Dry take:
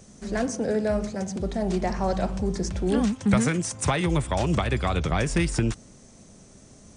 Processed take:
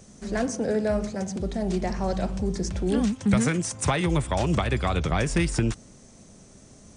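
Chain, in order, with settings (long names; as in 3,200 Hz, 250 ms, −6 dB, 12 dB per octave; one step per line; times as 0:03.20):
0:01.26–0:03.41: dynamic equaliser 980 Hz, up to −4 dB, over −37 dBFS, Q 0.75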